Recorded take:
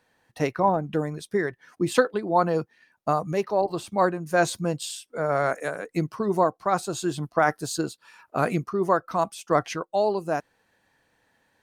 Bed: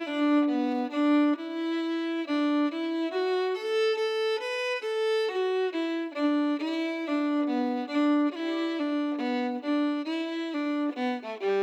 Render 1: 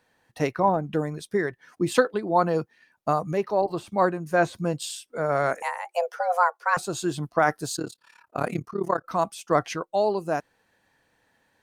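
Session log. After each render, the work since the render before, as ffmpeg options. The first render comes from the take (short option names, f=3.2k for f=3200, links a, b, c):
-filter_complex "[0:a]asettb=1/sr,asplit=3[a][b][c];[a]atrim=end=3.284[d];[b]atrim=start=3.28:end=4.73,asetpts=PTS-STARTPTS,afade=t=in:d=0.004:c=qsin,afade=t=out:st=1.446:d=0.004:c=qsin,acrossover=split=2800[e][f];[f]acompressor=threshold=-45dB:ratio=4:attack=1:release=60[g];[e][g]amix=inputs=2:normalize=0[h];[c]atrim=start=4.726[i];[d][h]acrossfade=d=0.004:c1=hsin:c2=qsin[j];[j][i]acrossfade=d=0.004:c1=qsin:c2=hsin,asettb=1/sr,asplit=3[k][l][m];[k]atrim=end=5.624[n];[l]atrim=start=5.62:end=6.77,asetpts=PTS-STARTPTS,afade=t=in:d=0.004:c=qsin,afade=t=out:st=1.146:d=0.004:c=qsin,afreqshift=350[o];[m]atrim=start=6.766[p];[n][o]acrossfade=d=0.004:c1=hsin:c2=qsin[q];[q][p]acrossfade=d=0.004:c1=qsin:c2=hsin,asettb=1/sr,asplit=3[r][s][t];[r]atrim=end=7.764[u];[s]atrim=start=7.76:end=9.05,asetpts=PTS-STARTPTS,afade=t=in:d=0.004:c=qsin,afade=t=out:st=1.286:d=0.004:c=qsin,tremolo=f=35:d=0.889[v];[t]atrim=start=9.046[w];[u][v]acrossfade=d=0.004:c1=hsin:c2=qsin[x];[x][w]acrossfade=d=0.004:c1=qsin:c2=hsin"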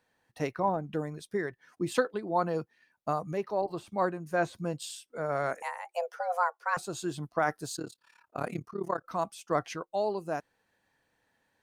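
-af "volume=-7dB"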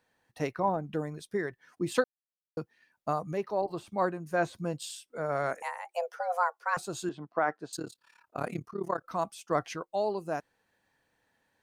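-filter_complex "[0:a]asettb=1/sr,asplit=3[a][b][c];[a]atrim=end=7.094[d];[b]atrim=start=7.09:end=7.73,asetpts=PTS-STARTPTS,afade=t=in:d=0.004:c=qsin,afade=t=out:st=0.636:d=0.004:c=qsin,highpass=230,lowpass=2.3k[e];[c]atrim=start=7.726[f];[d][e]acrossfade=d=0.004:c1=hsin:c2=qsin[g];[g][f]acrossfade=d=0.004:c1=qsin:c2=hsin,asplit=3[h][i][j];[h]atrim=end=2.04,asetpts=PTS-STARTPTS,afade=t=out:st=2.036:d=0.004:c=hsin[k];[i]atrim=start=2.04:end=2.57,asetpts=PTS-STARTPTS,volume=0[l];[j]atrim=start=2.57,asetpts=PTS-STARTPTS,afade=t=in:d=0.004:c=hsin[m];[k][l][m]concat=n=3:v=0:a=1"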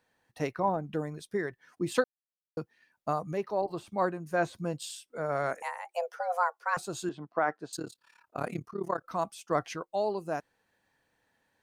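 -af anull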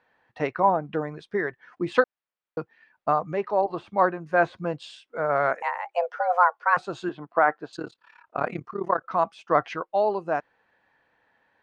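-af "lowpass=3.4k,equalizer=f=1.2k:w=0.35:g=9.5"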